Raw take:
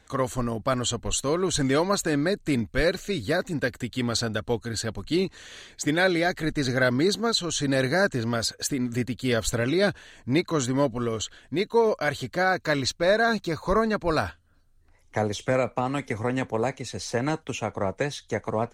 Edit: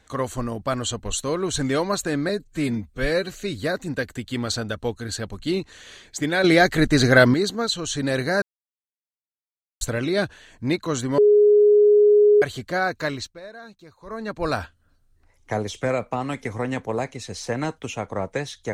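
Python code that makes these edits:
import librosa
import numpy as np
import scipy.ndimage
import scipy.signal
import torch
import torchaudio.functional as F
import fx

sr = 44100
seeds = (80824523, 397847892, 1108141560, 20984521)

y = fx.edit(x, sr, fx.stretch_span(start_s=2.29, length_s=0.7, factor=1.5),
    fx.clip_gain(start_s=6.09, length_s=0.9, db=8.5),
    fx.silence(start_s=8.07, length_s=1.39),
    fx.bleep(start_s=10.83, length_s=1.24, hz=416.0, db=-11.0),
    fx.fade_down_up(start_s=12.64, length_s=1.48, db=-19.0, fade_s=0.41), tone=tone)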